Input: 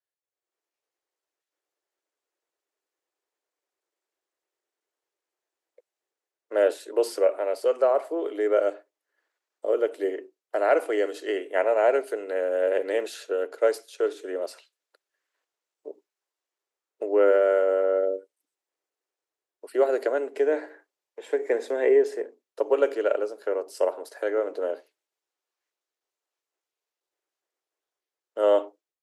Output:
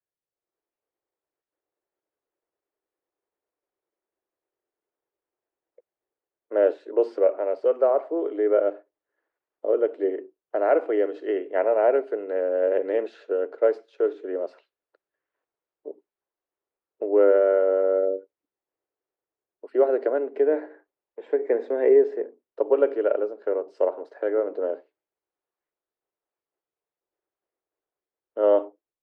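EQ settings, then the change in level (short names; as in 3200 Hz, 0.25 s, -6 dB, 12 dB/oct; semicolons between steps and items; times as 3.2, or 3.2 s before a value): tape spacing loss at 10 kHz 41 dB; low shelf 450 Hz +4 dB; +2.0 dB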